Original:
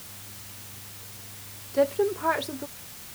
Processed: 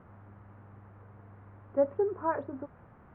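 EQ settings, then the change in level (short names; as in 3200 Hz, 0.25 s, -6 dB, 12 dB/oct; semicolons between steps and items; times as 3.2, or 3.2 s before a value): LPF 1400 Hz 24 dB/oct; air absorption 280 m; -3.0 dB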